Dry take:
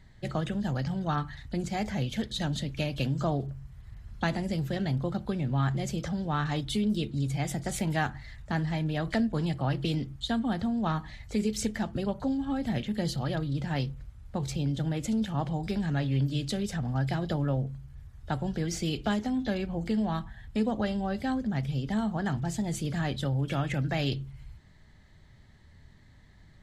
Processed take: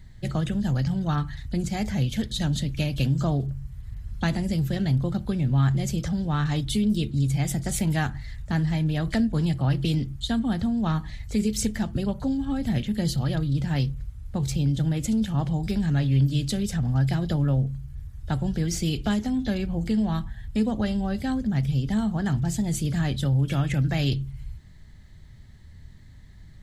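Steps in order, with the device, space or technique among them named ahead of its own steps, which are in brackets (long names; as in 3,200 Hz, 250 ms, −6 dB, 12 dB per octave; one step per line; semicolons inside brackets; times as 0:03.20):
smiley-face EQ (low-shelf EQ 180 Hz +8.5 dB; parametric band 710 Hz −3.5 dB 2.2 octaves; high-shelf EQ 7,600 Hz +9 dB)
level +2 dB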